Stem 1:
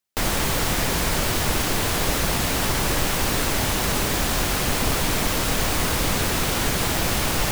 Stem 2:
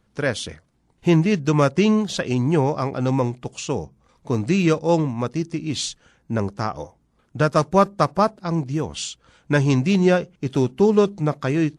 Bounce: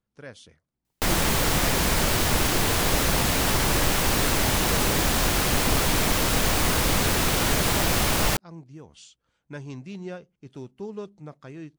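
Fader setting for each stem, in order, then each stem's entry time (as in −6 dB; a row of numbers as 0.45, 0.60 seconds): 0.0, −19.5 decibels; 0.85, 0.00 seconds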